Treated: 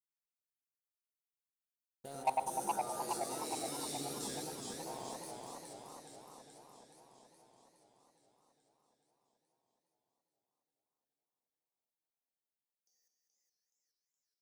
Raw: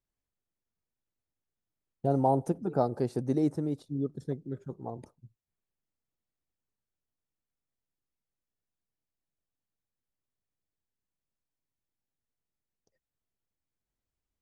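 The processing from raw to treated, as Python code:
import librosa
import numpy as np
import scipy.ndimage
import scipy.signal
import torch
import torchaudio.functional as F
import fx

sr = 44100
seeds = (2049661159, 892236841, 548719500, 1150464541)

y = fx.spec_trails(x, sr, decay_s=0.92)
y = scipy.signal.lfilter([1.0, -0.97], [1.0], y)
y = fx.hum_notches(y, sr, base_hz=60, count=6)
y = fx.comb_fb(y, sr, f0_hz=71.0, decay_s=0.29, harmonics='odd', damping=0.0, mix_pct=90)
y = fx.level_steps(y, sr, step_db=24)
y = fx.high_shelf(y, sr, hz=6700.0, db=4.5)
y = fx.echo_alternate(y, sr, ms=100, hz=1000.0, feedback_pct=67, wet_db=-2.5)
y = fx.leveller(y, sr, passes=2)
y = fx.buffer_glitch(y, sr, at_s=(3.45, 4.94), block=2048, repeats=4)
y = fx.echo_warbled(y, sr, ms=421, feedback_pct=66, rate_hz=2.8, cents=149, wet_db=-3.5)
y = F.gain(torch.from_numpy(y), 17.5).numpy()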